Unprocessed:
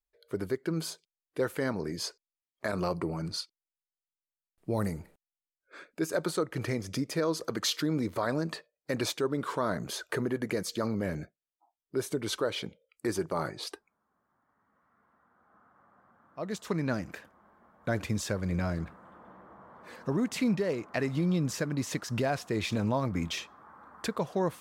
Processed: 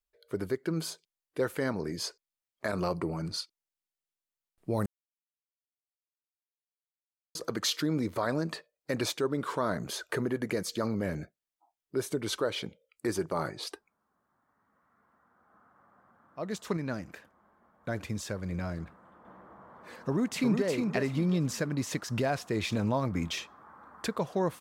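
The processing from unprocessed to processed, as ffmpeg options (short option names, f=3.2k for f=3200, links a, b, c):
-filter_complex "[0:a]asplit=2[a][b];[b]afade=t=in:st=20.02:d=0.01,afade=t=out:st=20.66:d=0.01,aecho=0:1:360|720|1080:0.595662|0.148916|0.0372289[c];[a][c]amix=inputs=2:normalize=0,asplit=5[d][e][f][g][h];[d]atrim=end=4.86,asetpts=PTS-STARTPTS,afade=t=out:st=4.856:d=0.004:c=hsin[i];[e]atrim=start=4.86:end=7.35,asetpts=PTS-STARTPTS,volume=0[j];[f]atrim=start=7.35:end=16.772,asetpts=PTS-STARTPTS,afade=t=in:d=0.004:c=hsin[k];[g]atrim=start=16.768:end=19.252,asetpts=PTS-STARTPTS,volume=-4dB[l];[h]atrim=start=19.248[m];[i][j][k]concat=n=3:v=0:a=1[n];[n][l]acrossfade=d=0.004:c1=hsin:c2=hsin[o];[o][m]acrossfade=d=0.004:c1=hsin:c2=hsin"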